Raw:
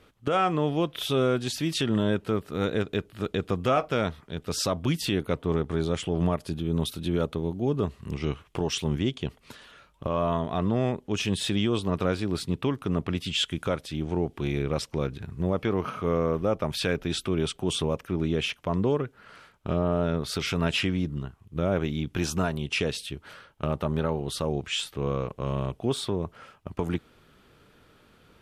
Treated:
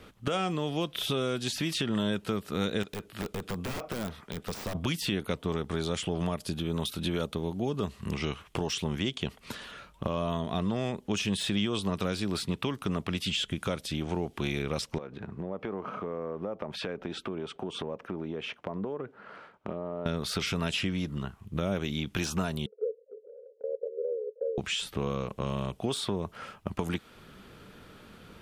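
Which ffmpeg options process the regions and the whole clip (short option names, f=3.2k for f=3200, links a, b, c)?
-filter_complex "[0:a]asettb=1/sr,asplit=3[a][b][c];[a]atrim=end=2.834[d];[b]atrim=start=2.83:end=4.75,asetpts=PTS-STARTPTS,afade=t=in:d=0.004:c=qsin,afade=t=out:st=1.916:d=0.004:c=qsin,lowshelf=f=360:g=-9.5,acompressor=threshold=-32dB:ratio=2:attack=3.2:release=140:knee=1:detection=peak,aeval=exprs='(mod(25.1*val(0)+1,2)-1)/25.1':c=same[e];[c]atrim=start=4.746[f];[d][e]acrossfade=d=0.004:c1=hsin:c2=qsin[g];[g][f]acrossfade=d=0.004:c1=qsin:c2=hsin,asettb=1/sr,asplit=3[h][i][j];[h]atrim=end=14.984[k];[i]atrim=start=14.98:end=20.06,asetpts=PTS-STARTPTS,afade=t=in:d=0.004:c=qsin,afade=t=out:st=5.076:d=0.004:c=qsin,bandpass=f=640:t=q:w=0.69,acompressor=threshold=-38dB:ratio=4:attack=3.2:release=140:knee=1:detection=peak[l];[j]atrim=start=20.056[m];[k][l]acrossfade=d=0.004:c1=hsin:c2=qsin[n];[n][m]acrossfade=d=0.004:c1=qsin:c2=hsin,asettb=1/sr,asplit=3[o][p][q];[o]atrim=end=22.664[r];[p]atrim=start=22.66:end=24.58,asetpts=PTS-STARTPTS,afade=t=in:d=0.004:c=qsin,afade=t=out:st=1.916:d=0.004:c=qsin,asuperpass=centerf=480:order=8:qfactor=4,acompressor=mode=upward:threshold=-45dB:ratio=2.5:attack=3.2:release=140:knee=2.83:detection=peak[s];[q]atrim=start=24.576[t];[r][s]acrossfade=d=0.004:c1=hsin:c2=qsin[u];[u][t]acrossfade=d=0.004:c1=qsin:c2=hsin,acrossover=split=560|3100[v][w][x];[v]acompressor=threshold=-39dB:ratio=4[y];[w]acompressor=threshold=-43dB:ratio=4[z];[x]acompressor=threshold=-41dB:ratio=4[aa];[y][z][aa]amix=inputs=3:normalize=0,equalizer=f=200:w=4.6:g=6,deesser=0.85,volume=6dB"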